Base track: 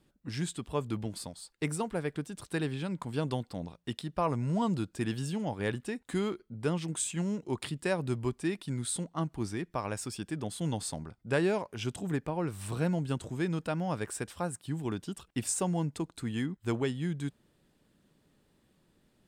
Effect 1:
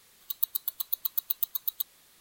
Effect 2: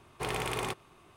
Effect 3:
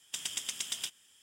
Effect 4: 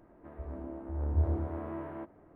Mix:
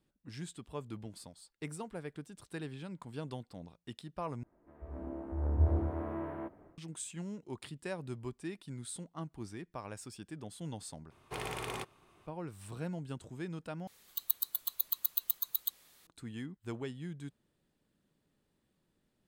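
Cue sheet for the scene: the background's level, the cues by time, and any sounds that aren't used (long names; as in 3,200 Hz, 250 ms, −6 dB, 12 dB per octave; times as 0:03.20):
base track −9.5 dB
0:04.43: overwrite with 4 −12 dB + automatic gain control gain up to 12.5 dB
0:11.11: overwrite with 2 −6 dB
0:13.87: overwrite with 1 −3.5 dB
not used: 3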